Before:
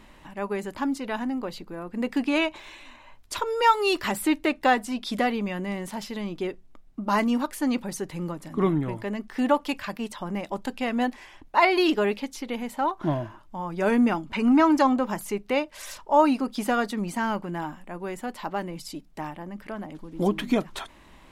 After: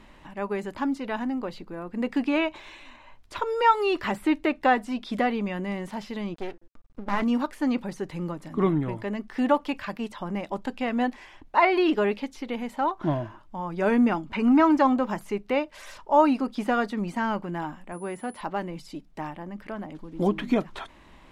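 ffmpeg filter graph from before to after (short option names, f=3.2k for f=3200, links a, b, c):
-filter_complex "[0:a]asettb=1/sr,asplit=3[a][b][c];[a]atrim=end=6.344[d];[b]atrim=start=6.34:end=7.22,asetpts=PTS-STARTPTS,afade=t=in:d=0.004:c=qsin,afade=t=out:st=0.876:d=0.004:c=qsin,bandreject=f=170.6:t=h:w=4,bandreject=f=341.2:t=h:w=4,bandreject=f=511.8:t=h:w=4,bandreject=f=682.4:t=h:w=4,bandreject=f=853:t=h:w=4,bandreject=f=1.0236k:t=h:w=4,bandreject=f=1.1942k:t=h:w=4,bandreject=f=1.3648k:t=h:w=4,bandreject=f=1.5354k:t=h:w=4,bandreject=f=1.706k:t=h:w=4,bandreject=f=1.8766k:t=h:w=4,acompressor=mode=upward:threshold=-44dB:ratio=2.5:attack=3.2:release=140:knee=2.83:detection=peak,aeval=exprs='max(val(0),0)':c=same[e];[c]atrim=start=7.216[f];[d][e]acrossfade=d=0.004:c1=hsin:c2=qsin[g];[g][f]acrossfade=d=0.004:c1=qsin:c2=hsin,asettb=1/sr,asplit=3[h][i][j];[h]atrim=end=17.924[k];[i]atrim=start=17.92:end=18.41,asetpts=PTS-STARTPTS,afade=t=in:d=0.004:c=qsin,afade=t=out:st=0.486:d=0.004:c=qsin,highpass=58,highshelf=f=5.8k:g=-6,aeval=exprs='val(0)+0.00794*sin(2*PI*10000*n/s)':c=same[l];[j]atrim=start=18.406[m];[k][l]acrossfade=d=0.004:c1=hsin:c2=qsin[n];[n][m]acrossfade=d=0.004:c1=qsin:c2=hsin,acrossover=split=3000[o][p];[p]acompressor=threshold=-43dB:ratio=4:attack=1:release=60[q];[o][q]amix=inputs=2:normalize=0,highshelf=f=8.3k:g=-10.5"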